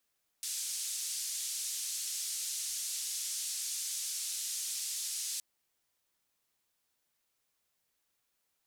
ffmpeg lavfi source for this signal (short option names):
-f lavfi -i "anoisesrc=c=white:d=4.97:r=44100:seed=1,highpass=f=5500,lowpass=f=8300,volume=-24.3dB"